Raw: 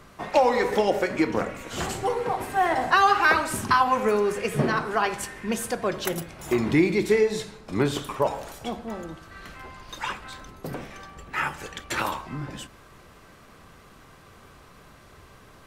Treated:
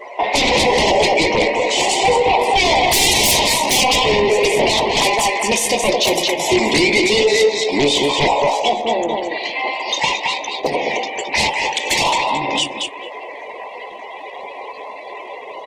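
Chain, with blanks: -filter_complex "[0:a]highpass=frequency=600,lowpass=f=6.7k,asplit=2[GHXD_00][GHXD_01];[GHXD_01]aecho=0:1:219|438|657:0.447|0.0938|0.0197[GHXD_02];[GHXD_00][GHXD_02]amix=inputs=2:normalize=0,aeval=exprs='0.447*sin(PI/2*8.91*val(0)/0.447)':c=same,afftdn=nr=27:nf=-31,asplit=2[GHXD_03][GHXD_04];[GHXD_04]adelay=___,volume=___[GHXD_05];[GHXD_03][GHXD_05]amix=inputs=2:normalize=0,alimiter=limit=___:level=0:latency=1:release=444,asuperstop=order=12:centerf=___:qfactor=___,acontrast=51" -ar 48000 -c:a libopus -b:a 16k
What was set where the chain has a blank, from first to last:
14, -9dB, -13.5dB, 1400, 1.5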